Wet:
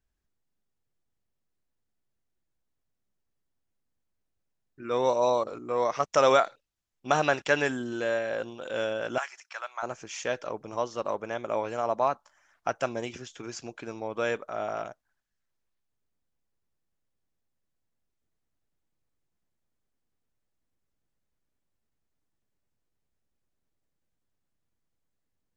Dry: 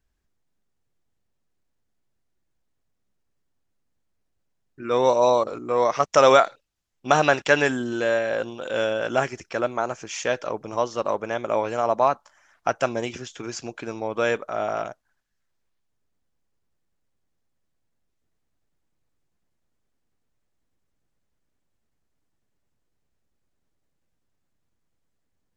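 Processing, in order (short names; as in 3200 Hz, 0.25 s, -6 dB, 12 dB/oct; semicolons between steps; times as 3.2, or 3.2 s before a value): 9.18–9.83 HPF 870 Hz 24 dB/oct; gain -6 dB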